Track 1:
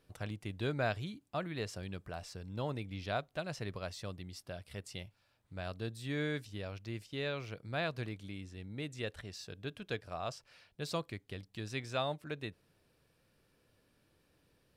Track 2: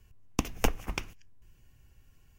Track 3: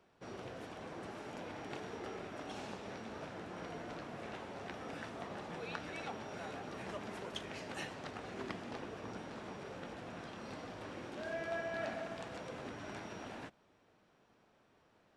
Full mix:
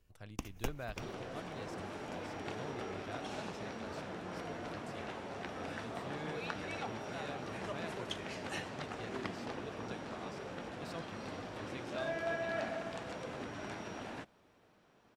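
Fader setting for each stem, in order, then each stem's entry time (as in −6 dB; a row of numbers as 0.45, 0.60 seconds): −10.5, −12.5, +2.5 decibels; 0.00, 0.00, 0.75 seconds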